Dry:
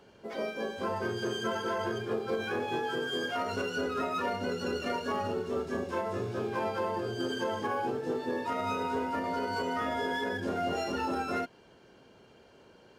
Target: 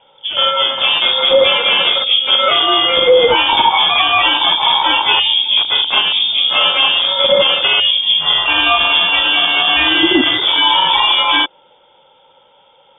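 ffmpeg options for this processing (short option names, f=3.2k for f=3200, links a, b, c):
-af "afwtdn=0.00794,aexciter=amount=12.4:drive=6.9:freq=2.7k,lowpass=f=3.1k:t=q:w=0.5098,lowpass=f=3.1k:t=q:w=0.6013,lowpass=f=3.1k:t=q:w=0.9,lowpass=f=3.1k:t=q:w=2.563,afreqshift=-3700,adynamicequalizer=threshold=0.00224:dfrequency=340:dqfactor=3.5:tfrequency=340:tqfactor=3.5:attack=5:release=100:ratio=0.375:range=3:mode=boostabove:tftype=bell,alimiter=level_in=20dB:limit=-1dB:release=50:level=0:latency=1,volume=-1dB"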